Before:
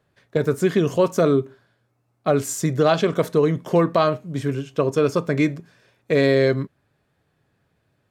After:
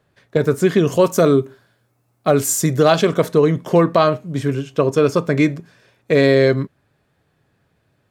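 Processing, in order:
0:00.92–0:03.13: high-shelf EQ 7,600 Hz +10 dB
level +4 dB

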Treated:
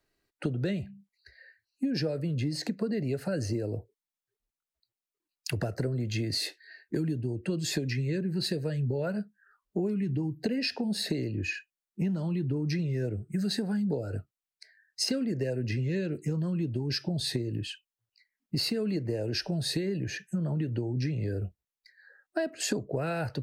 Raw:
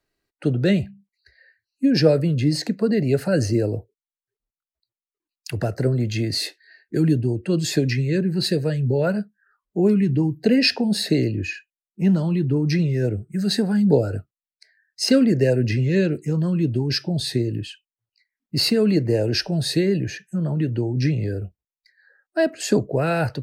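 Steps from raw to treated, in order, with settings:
downward compressor 10 to 1, threshold −27 dBFS, peak gain reduction 17 dB

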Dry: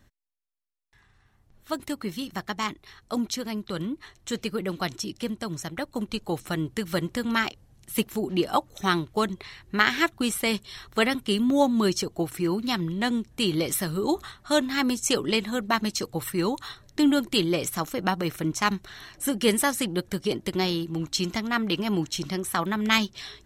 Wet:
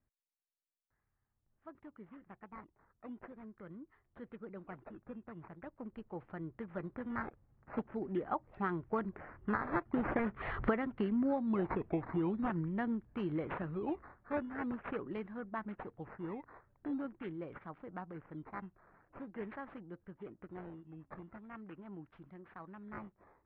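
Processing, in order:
source passing by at 0:10.73, 9 m/s, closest 1.6 metres
downward compressor 16 to 1, threshold −42 dBFS, peak gain reduction 25 dB
sample-and-hold swept by an LFO 10×, swing 100% 0.44 Hz
low-pass filter 1,800 Hz 24 dB per octave
level +13 dB

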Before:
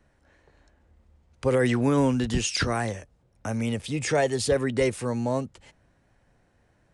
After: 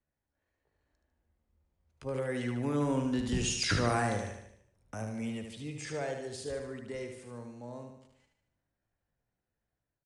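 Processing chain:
source passing by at 0:02.74, 6 m/s, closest 2.5 metres
automatic gain control gain up to 4.5 dB
tempo change 0.69×
on a send: repeating echo 75 ms, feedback 52%, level −6 dB
on the sum: level −8 dB

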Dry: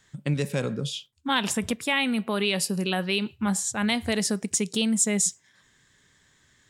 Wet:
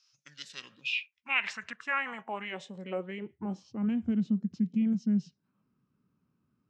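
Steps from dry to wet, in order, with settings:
dynamic equaliser 3,800 Hz, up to +6 dB, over −42 dBFS, Q 1.5
formants moved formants −5 semitones
band-pass filter sweep 5,300 Hz → 210 Hz, 0:00.19–0:04.00

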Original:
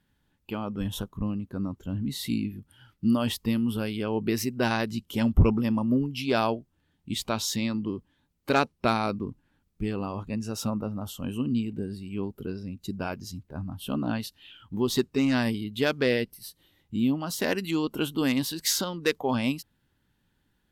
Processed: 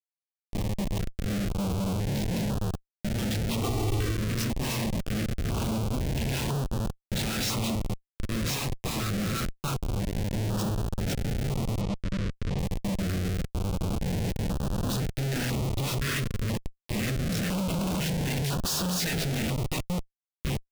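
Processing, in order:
delay that plays each chunk backwards 571 ms, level −1.5 dB
inverse Chebyshev band-stop filter 310–630 Hz, stop band 50 dB
rectangular room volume 210 cubic metres, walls furnished, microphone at 1.7 metres
comparator with hysteresis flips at −28.5 dBFS
0:03.63–0:04.17: comb filter 2.6 ms, depth 90%
0:11.81–0:12.59: low-pass filter 5,400 Hz 12 dB per octave
notch on a step sequencer 2 Hz 820–2,100 Hz

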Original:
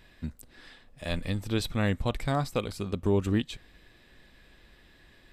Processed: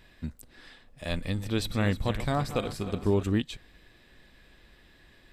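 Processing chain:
0:01.22–0:03.24: feedback delay that plays each chunk backwards 155 ms, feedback 69%, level −12 dB

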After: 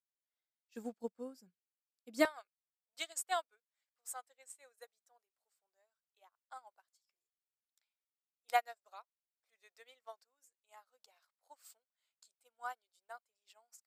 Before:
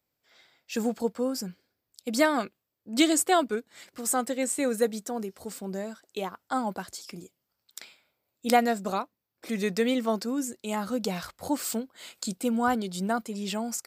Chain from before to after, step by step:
high-pass filter 89 Hz 24 dB per octave, from 0:02.25 640 Hz
expander for the loud parts 2.5 to 1, over −42 dBFS
level −5.5 dB

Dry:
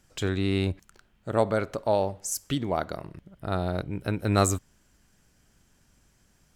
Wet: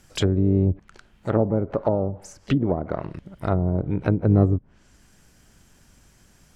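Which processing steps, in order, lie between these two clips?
treble cut that deepens with the level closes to 360 Hz, closed at −23 dBFS
pitch-shifted copies added +7 semitones −17 dB
level +8 dB

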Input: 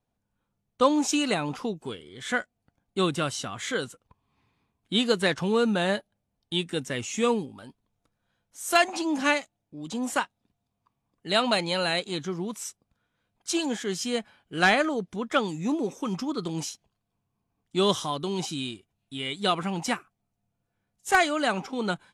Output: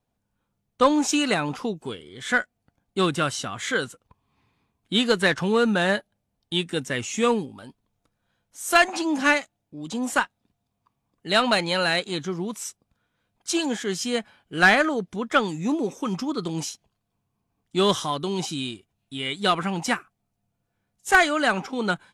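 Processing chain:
dynamic equaliser 1,600 Hz, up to +5 dB, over −40 dBFS, Q 1.8
in parallel at −4.5 dB: asymmetric clip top −20 dBFS
on the sum: level −1.5 dB

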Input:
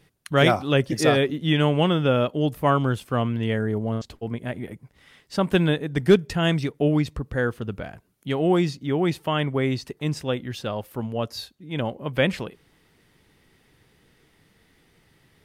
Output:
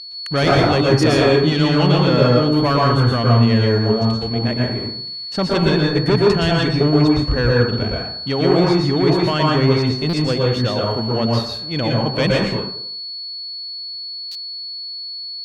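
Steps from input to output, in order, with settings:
leveller curve on the samples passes 3
steady tone 4,400 Hz −24 dBFS
harmonic generator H 6 −42 dB, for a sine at −5 dBFS
high-frequency loss of the air 59 metres
dense smooth reverb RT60 0.62 s, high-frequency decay 0.45×, pre-delay 105 ms, DRR −2.5 dB
buffer that repeats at 0:10.09/0:14.31, samples 256, times 6
level −5.5 dB

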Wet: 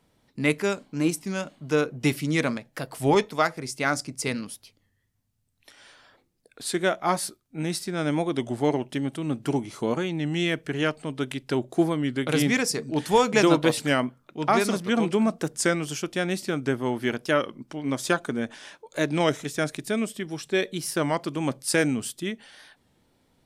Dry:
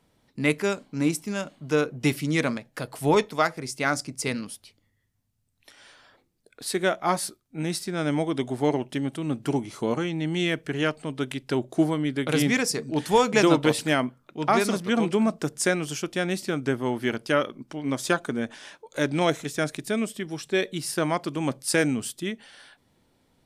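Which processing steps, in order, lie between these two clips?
wow of a warped record 33 1/3 rpm, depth 100 cents

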